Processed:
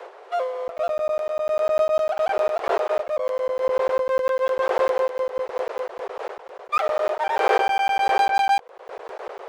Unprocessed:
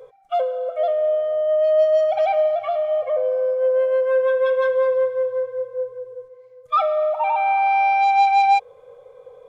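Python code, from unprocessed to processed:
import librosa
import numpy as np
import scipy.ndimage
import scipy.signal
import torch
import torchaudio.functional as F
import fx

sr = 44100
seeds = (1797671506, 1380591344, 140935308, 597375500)

y = np.where(x < 0.0, 10.0 ** (-12.0 / 20.0) * x, x)
y = fx.dmg_wind(y, sr, seeds[0], corner_hz=610.0, level_db=-28.0)
y = scipy.signal.sosfilt(scipy.signal.butter(12, 390.0, 'highpass', fs=sr, output='sos'), y)
y = fx.buffer_crackle(y, sr, first_s=0.68, period_s=0.1, block=512, kind='zero')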